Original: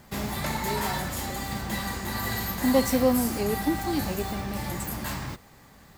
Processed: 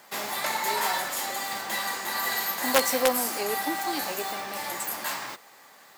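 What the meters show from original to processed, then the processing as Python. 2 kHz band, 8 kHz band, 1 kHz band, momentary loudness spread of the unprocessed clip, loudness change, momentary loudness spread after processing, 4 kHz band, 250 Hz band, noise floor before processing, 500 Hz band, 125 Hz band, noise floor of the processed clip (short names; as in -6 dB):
+4.5 dB, +4.5 dB, +3.0 dB, 10 LU, +0.5 dB, 9 LU, +4.5 dB, -10.5 dB, -53 dBFS, -1.5 dB, -20.5 dB, -53 dBFS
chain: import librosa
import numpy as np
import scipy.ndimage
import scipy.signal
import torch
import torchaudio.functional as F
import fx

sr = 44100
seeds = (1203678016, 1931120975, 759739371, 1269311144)

y = (np.mod(10.0 ** (11.5 / 20.0) * x + 1.0, 2.0) - 1.0) / 10.0 ** (11.5 / 20.0)
y = scipy.signal.sosfilt(scipy.signal.butter(2, 580.0, 'highpass', fs=sr, output='sos'), y)
y = 10.0 ** (-10.5 / 20.0) * np.tanh(y / 10.0 ** (-10.5 / 20.0))
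y = y * 10.0 ** (4.0 / 20.0)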